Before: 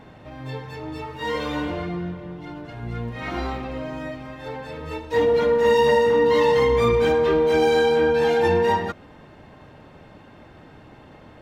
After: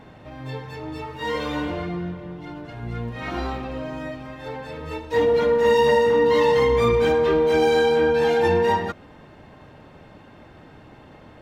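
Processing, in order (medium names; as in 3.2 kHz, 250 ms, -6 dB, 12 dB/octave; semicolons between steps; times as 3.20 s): 3.09–4.26 s: band-stop 2.1 kHz, Q 21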